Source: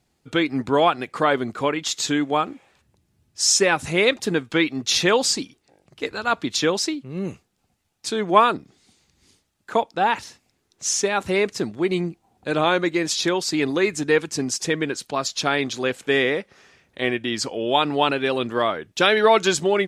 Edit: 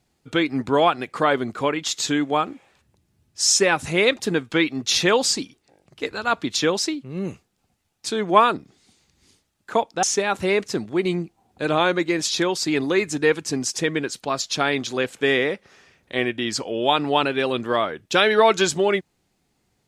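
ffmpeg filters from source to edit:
ffmpeg -i in.wav -filter_complex "[0:a]asplit=2[link_01][link_02];[link_01]atrim=end=10.032[link_03];[link_02]atrim=start=10.888[link_04];[link_03][link_04]acrossfade=duration=0.004:curve1=hsin:curve2=hsin" out.wav

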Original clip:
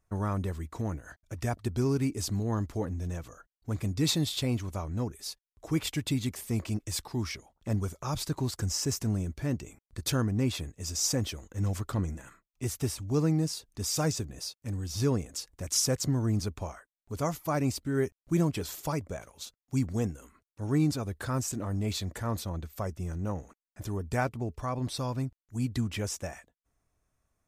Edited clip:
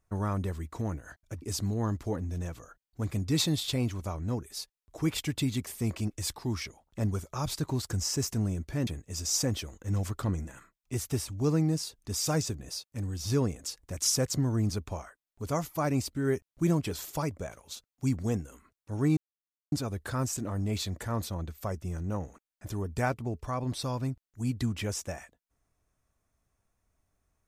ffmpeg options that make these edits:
ffmpeg -i in.wav -filter_complex "[0:a]asplit=4[link_01][link_02][link_03][link_04];[link_01]atrim=end=1.422[link_05];[link_02]atrim=start=2.108:end=9.562[link_06];[link_03]atrim=start=10.568:end=20.87,asetpts=PTS-STARTPTS,afade=type=out:start_time=10.298:duration=0.004:curve=hsin,apad=pad_dur=0.55[link_07];[link_04]atrim=start=20.87,asetpts=PTS-STARTPTS,afade=type=in:duration=0.004:curve=hsin[link_08];[link_05][link_06]acrossfade=duration=0.004:curve1=hsin:curve2=hsin[link_09];[link_07][link_08]concat=n=2:v=0:a=1[link_10];[link_09][link_10]acrossfade=duration=0.004:curve1=hsin:curve2=hsin" out.wav

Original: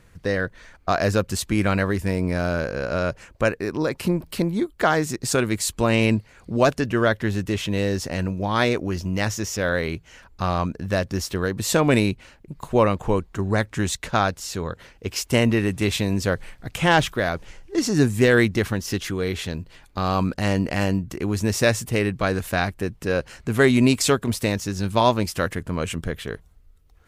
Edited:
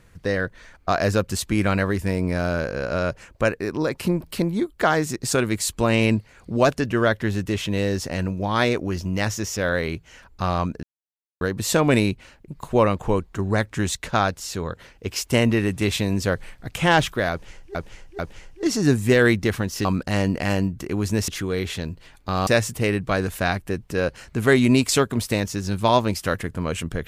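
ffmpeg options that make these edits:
ffmpeg -i in.wav -filter_complex "[0:a]asplit=8[link_01][link_02][link_03][link_04][link_05][link_06][link_07][link_08];[link_01]atrim=end=10.83,asetpts=PTS-STARTPTS,afade=type=out:start_time=10.826:duration=0.004:curve=hsin[link_09];[link_02]atrim=start=10.83:end=11.41,asetpts=PTS-STARTPTS,volume=0[link_10];[link_03]atrim=start=11.41:end=17.752,asetpts=PTS-STARTPTS,afade=type=in:duration=0.004:curve=hsin[link_11];[link_04]atrim=start=17.308:end=17.752[link_12];[link_05]atrim=start=17.308:end=18.972[link_13];[link_06]atrim=start=20.158:end=21.592[link_14];[link_07]atrim=start=18.968:end=20.162[link_15];[link_08]atrim=start=21.588[link_16];[link_09][link_10][link_11]concat=n=3:v=0:a=1[link_17];[link_17][link_12]acrossfade=duration=0.004:curve1=hsin:curve2=hsin[link_18];[link_18][link_13]acrossfade=duration=0.004:curve1=hsin:curve2=hsin[link_19];[link_19][link_14]acrossfade=duration=0.004:curve1=hsin:curve2=hsin[link_20];[link_20][link_15]acrossfade=duration=0.004:curve1=hsin:curve2=hsin[link_21];[link_21][link_16]acrossfade=duration=0.004:curve1=hsin:curve2=hsin" out.wav

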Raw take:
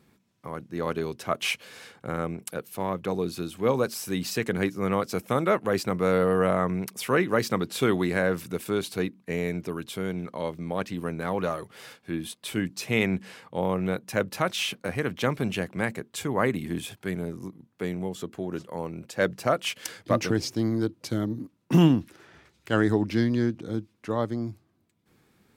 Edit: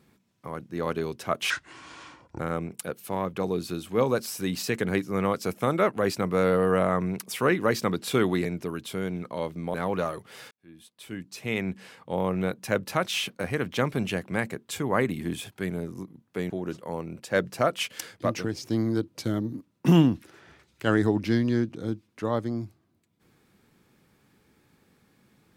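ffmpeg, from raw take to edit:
ffmpeg -i in.wav -filter_complex "[0:a]asplit=8[link_01][link_02][link_03][link_04][link_05][link_06][link_07][link_08];[link_01]atrim=end=1.504[link_09];[link_02]atrim=start=1.5:end=2.07,asetpts=PTS-STARTPTS,asetrate=28224,aresample=44100[link_10];[link_03]atrim=start=2.066:end=8.132[link_11];[link_04]atrim=start=9.478:end=10.772[link_12];[link_05]atrim=start=11.188:end=11.96,asetpts=PTS-STARTPTS,afade=type=out:start_time=0.768:duration=0.004:curve=hsin[link_13];[link_06]atrim=start=11.96:end=17.952,asetpts=PTS-STARTPTS,afade=type=in:duration=1.83[link_14];[link_07]atrim=start=18.358:end=20.49,asetpts=PTS-STARTPTS,afade=type=out:start_time=1.372:duration=0.76:silence=0.446684[link_15];[link_08]atrim=start=20.49,asetpts=PTS-STARTPTS,afade=type=in:duration=0.004:curve=hsin:silence=0.446684[link_16];[link_09][link_10]acrossfade=duration=0.004:curve1=hsin:curve2=hsin[link_17];[link_17][link_11]acrossfade=duration=0.004:curve1=hsin:curve2=hsin[link_18];[link_18][link_12]acrossfade=duration=0.004:curve1=hsin:curve2=hsin[link_19];[link_13][link_14]concat=n=2:v=0:a=1[link_20];[link_19][link_20]acrossfade=duration=0.004:curve1=hsin:curve2=hsin[link_21];[link_15][link_16]concat=n=2:v=0:a=1[link_22];[link_21][link_22]acrossfade=duration=0.004:curve1=hsin:curve2=hsin" out.wav

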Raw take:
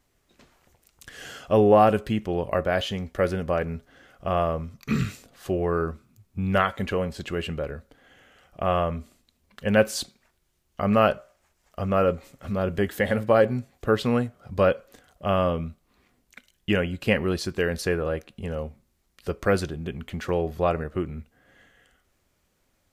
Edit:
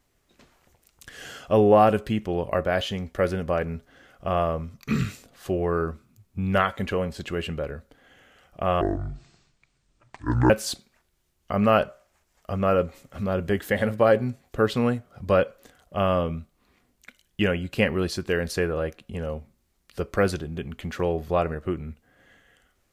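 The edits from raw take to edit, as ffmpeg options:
ffmpeg -i in.wav -filter_complex "[0:a]asplit=3[link_01][link_02][link_03];[link_01]atrim=end=8.814[link_04];[link_02]atrim=start=8.81:end=9.79,asetpts=PTS-STARTPTS,asetrate=25578,aresample=44100[link_05];[link_03]atrim=start=9.786[link_06];[link_04][link_05]acrossfade=duration=0.004:curve1=hsin:curve2=hsin[link_07];[link_07][link_06]acrossfade=duration=0.004:curve1=hsin:curve2=hsin" out.wav

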